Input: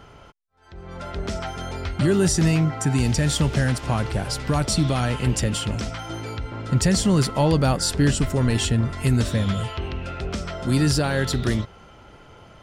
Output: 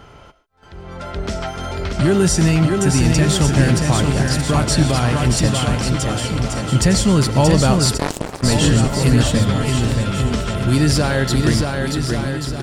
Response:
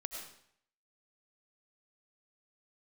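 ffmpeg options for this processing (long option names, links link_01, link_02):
-filter_complex "[0:a]aecho=1:1:630|1134|1537|1860|2118:0.631|0.398|0.251|0.158|0.1,asplit=2[link_01][link_02];[1:a]atrim=start_sample=2205,atrim=end_sample=6615[link_03];[link_02][link_03]afir=irnorm=-1:irlink=0,volume=-6dB[link_04];[link_01][link_04]amix=inputs=2:normalize=0,asplit=3[link_05][link_06][link_07];[link_05]afade=type=out:start_time=7.97:duration=0.02[link_08];[link_06]aeval=exprs='0.708*(cos(1*acos(clip(val(0)/0.708,-1,1)))-cos(1*PI/2))+0.282*(cos(3*acos(clip(val(0)/0.708,-1,1)))-cos(3*PI/2))':channel_layout=same,afade=type=in:start_time=7.97:duration=0.02,afade=type=out:start_time=8.42:duration=0.02[link_09];[link_07]afade=type=in:start_time=8.42:duration=0.02[link_10];[link_08][link_09][link_10]amix=inputs=3:normalize=0,volume=1.5dB"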